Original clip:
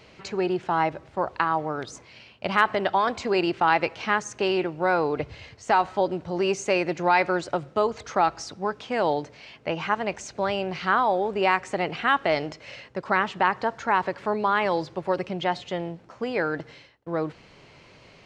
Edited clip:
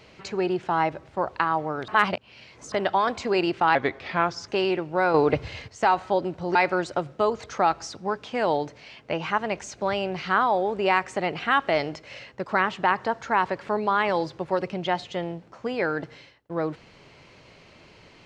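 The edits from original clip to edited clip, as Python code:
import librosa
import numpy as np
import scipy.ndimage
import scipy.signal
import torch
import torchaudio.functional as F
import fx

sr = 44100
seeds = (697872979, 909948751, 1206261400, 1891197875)

y = fx.edit(x, sr, fx.reverse_span(start_s=1.88, length_s=0.84),
    fx.speed_span(start_s=3.75, length_s=0.6, speed=0.82),
    fx.clip_gain(start_s=5.01, length_s=0.54, db=6.0),
    fx.cut(start_s=6.42, length_s=0.7), tone=tone)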